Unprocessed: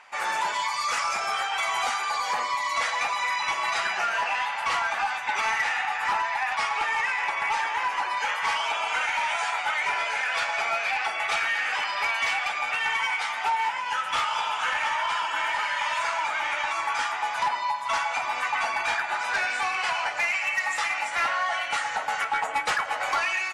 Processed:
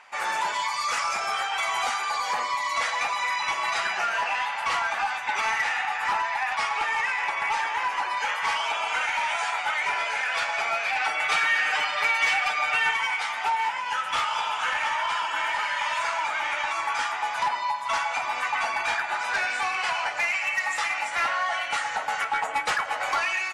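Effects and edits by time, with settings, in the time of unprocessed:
0:10.95–0:12.91: comb filter 6.6 ms, depth 82%

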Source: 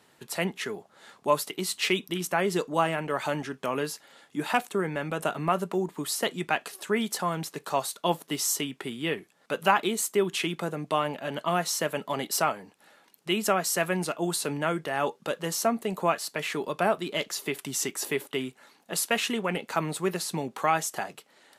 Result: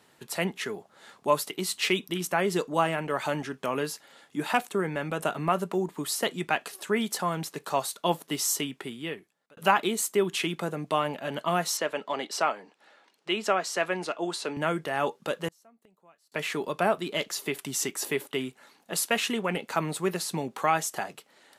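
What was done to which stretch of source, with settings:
0:08.66–0:09.57: fade out
0:11.77–0:14.57: band-pass filter 300–5,500 Hz
0:15.48–0:16.32: gate with flip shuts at −27 dBFS, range −33 dB

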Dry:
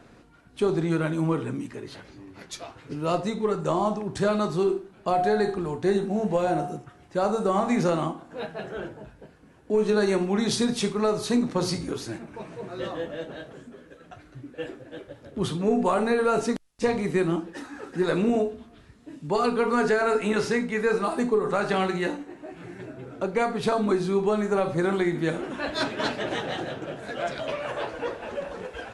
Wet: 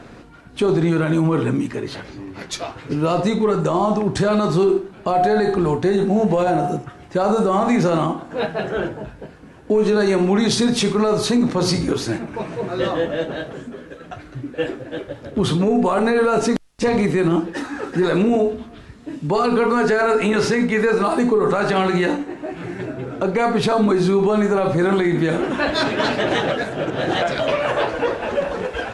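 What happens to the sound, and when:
0:26.50–0:27.22: reverse
whole clip: high-shelf EQ 9,600 Hz −8.5 dB; boost into a limiter +20 dB; level −8.5 dB

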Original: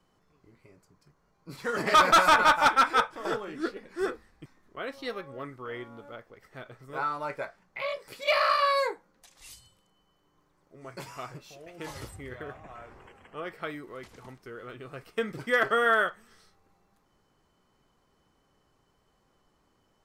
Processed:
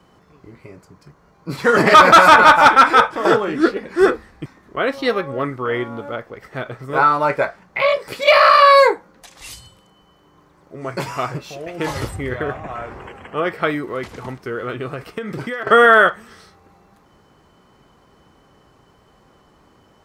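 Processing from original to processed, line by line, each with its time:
0:14.90–0:15.67: downward compressor 12 to 1, threshold −39 dBFS
whole clip: high-pass filter 42 Hz; high-shelf EQ 3,900 Hz −7 dB; boost into a limiter +18 dB; level −1 dB

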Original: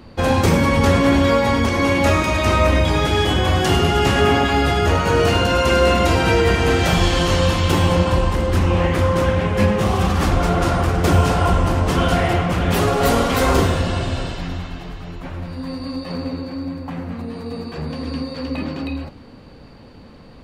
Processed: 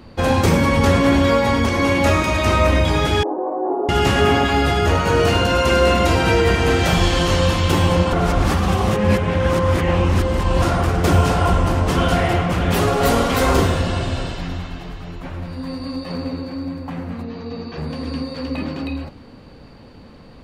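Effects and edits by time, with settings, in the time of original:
0:03.23–0:03.89: elliptic band-pass filter 310–940 Hz, stop band 60 dB
0:08.13–0:10.62: reverse
0:17.23–0:17.78: elliptic low-pass filter 6,300 Hz

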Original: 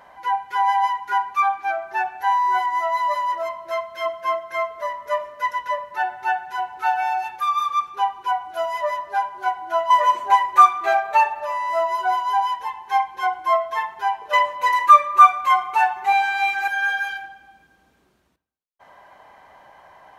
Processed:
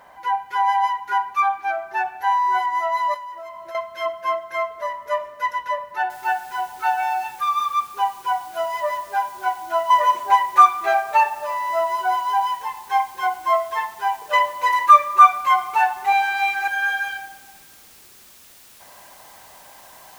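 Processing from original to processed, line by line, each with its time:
0:03.14–0:03.75: downward compressor 10 to 1, threshold −32 dBFS
0:06.10: noise floor change −69 dB −48 dB

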